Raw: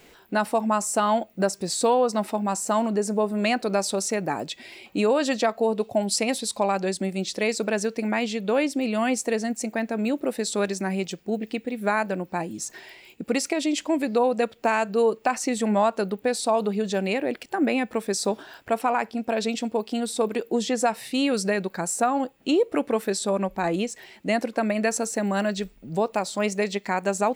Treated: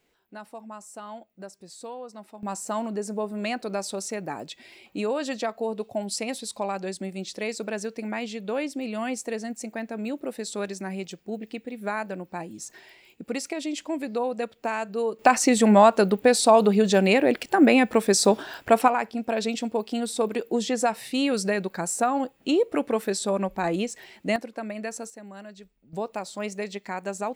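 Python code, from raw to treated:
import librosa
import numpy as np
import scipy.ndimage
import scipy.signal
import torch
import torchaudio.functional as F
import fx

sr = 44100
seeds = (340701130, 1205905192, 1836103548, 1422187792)

y = fx.gain(x, sr, db=fx.steps((0.0, -18.0), (2.43, -6.0), (15.19, 6.0), (18.88, -1.0), (24.36, -9.5), (25.1, -18.0), (25.93, -7.0)))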